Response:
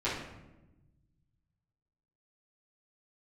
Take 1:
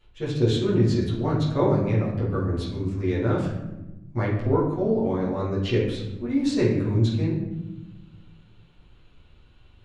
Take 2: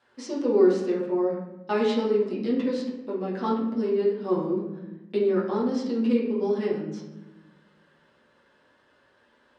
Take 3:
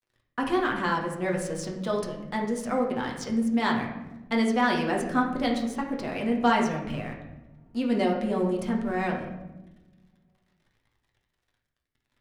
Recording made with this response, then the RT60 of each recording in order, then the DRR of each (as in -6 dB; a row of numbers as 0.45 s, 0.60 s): 1; 1.0 s, 1.0 s, 1.0 s; -11.5 dB, -6.0 dB, -1.0 dB